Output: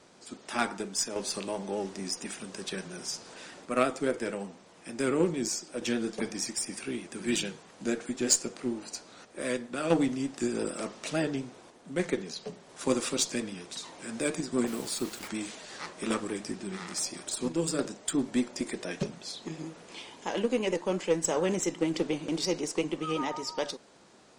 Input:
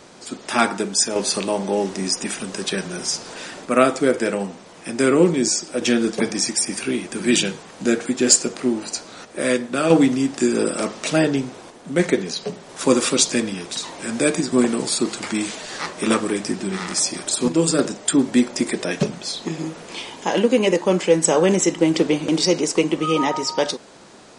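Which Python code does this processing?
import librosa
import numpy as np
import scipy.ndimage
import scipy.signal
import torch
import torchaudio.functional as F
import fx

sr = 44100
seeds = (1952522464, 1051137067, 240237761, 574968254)

y = fx.vibrato(x, sr, rate_hz=8.6, depth_cents=42.0)
y = fx.cheby_harmonics(y, sr, harmonics=(3, 5, 8), levels_db=(-15, -36, -37), full_scale_db=0.0)
y = fx.quant_dither(y, sr, seeds[0], bits=6, dither='none', at=(14.66, 15.27), fade=0.02)
y = F.gain(torch.from_numpy(y), -7.0).numpy()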